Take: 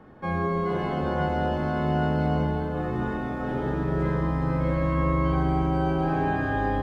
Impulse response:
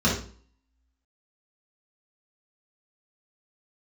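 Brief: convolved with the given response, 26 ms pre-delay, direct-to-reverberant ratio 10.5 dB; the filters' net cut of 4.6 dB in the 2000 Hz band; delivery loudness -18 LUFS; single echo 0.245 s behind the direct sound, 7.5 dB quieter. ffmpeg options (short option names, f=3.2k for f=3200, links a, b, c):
-filter_complex "[0:a]equalizer=f=2k:t=o:g=-6.5,aecho=1:1:245:0.422,asplit=2[a][b];[1:a]atrim=start_sample=2205,adelay=26[c];[b][c]afir=irnorm=-1:irlink=0,volume=-25.5dB[d];[a][d]amix=inputs=2:normalize=0,volume=6.5dB"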